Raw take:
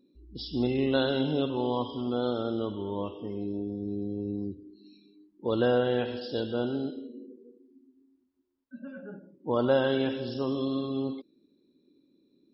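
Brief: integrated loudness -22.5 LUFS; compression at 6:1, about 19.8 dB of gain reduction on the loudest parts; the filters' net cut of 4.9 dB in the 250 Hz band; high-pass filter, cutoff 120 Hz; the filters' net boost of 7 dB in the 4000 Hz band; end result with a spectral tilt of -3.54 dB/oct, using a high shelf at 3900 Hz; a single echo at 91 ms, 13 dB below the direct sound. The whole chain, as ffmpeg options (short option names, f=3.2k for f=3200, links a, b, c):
-af "highpass=120,equalizer=f=250:t=o:g=-5.5,highshelf=f=3.9k:g=6.5,equalizer=f=4k:t=o:g=5,acompressor=threshold=-43dB:ratio=6,aecho=1:1:91:0.224,volume=24dB"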